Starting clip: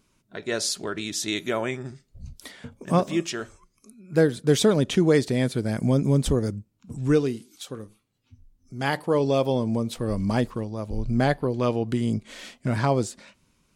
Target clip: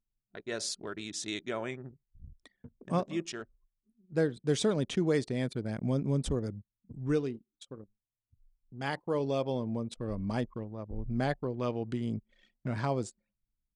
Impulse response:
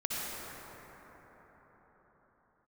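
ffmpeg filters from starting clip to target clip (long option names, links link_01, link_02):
-af "anlmdn=3.98,aresample=22050,aresample=44100,volume=-9dB"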